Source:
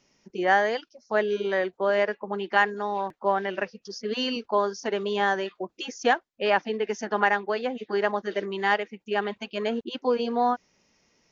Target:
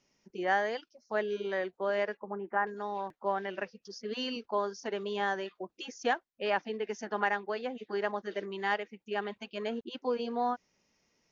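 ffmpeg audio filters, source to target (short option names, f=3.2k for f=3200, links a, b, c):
-filter_complex "[0:a]asettb=1/sr,asplit=3[a][b][c];[a]atrim=end=2.174[d];[b]atrim=start=2.17:end=2.67,asetpts=PTS-STARTPTS,afade=t=in:d=0.004:c=qsin,afade=t=out:st=0.496:d=0.004:c=qsin,lowpass=f=1.6k:w=0.5412,lowpass=f=1.6k:w=1.3066[e];[c]atrim=start=2.666[f];[d][e]acrossfade=d=0.004:c1=hsin:c2=qsin[g];[g][f]acrossfade=d=0.004:c1=qsin:c2=hsin,volume=-7.5dB"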